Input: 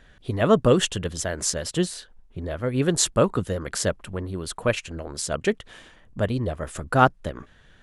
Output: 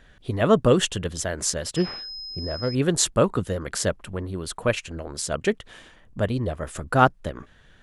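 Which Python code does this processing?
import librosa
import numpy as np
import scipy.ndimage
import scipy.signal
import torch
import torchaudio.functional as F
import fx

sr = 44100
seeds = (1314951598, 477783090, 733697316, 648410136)

y = fx.pwm(x, sr, carrier_hz=5100.0, at=(1.76, 2.75))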